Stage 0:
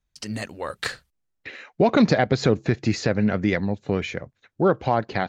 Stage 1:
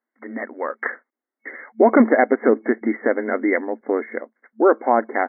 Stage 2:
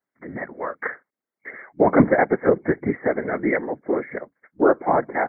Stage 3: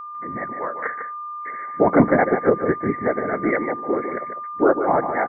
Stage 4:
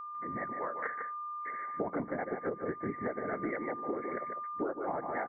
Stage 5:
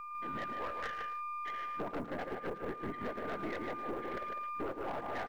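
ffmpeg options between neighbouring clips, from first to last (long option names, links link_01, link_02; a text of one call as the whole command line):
ffmpeg -i in.wav -af "afftfilt=real='re*between(b*sr/4096,220,2200)':imag='im*between(b*sr/4096,220,2200)':win_size=4096:overlap=0.75,volume=5dB" out.wav
ffmpeg -i in.wav -af "afftfilt=real='hypot(re,im)*cos(2*PI*random(0))':imag='hypot(re,im)*sin(2*PI*random(1))':win_size=512:overlap=0.75,volume=4dB" out.wav
ffmpeg -i in.wav -af "aeval=exprs='val(0)+0.0251*sin(2*PI*1200*n/s)':channel_layout=same,aecho=1:1:150:0.398" out.wav
ffmpeg -i in.wav -af "acompressor=threshold=-23dB:ratio=16,volume=-8dB" out.wav
ffmpeg -i in.wav -filter_complex "[0:a]aeval=exprs='(tanh(56.2*val(0)+0.65)-tanh(0.65))/56.2':channel_layout=same,acrusher=bits=9:mode=log:mix=0:aa=0.000001,asplit=2[link_01][link_02];[link_02]adelay=110,highpass=300,lowpass=3400,asoftclip=type=hard:threshold=-39.5dB,volume=-11dB[link_03];[link_01][link_03]amix=inputs=2:normalize=0,volume=1dB" out.wav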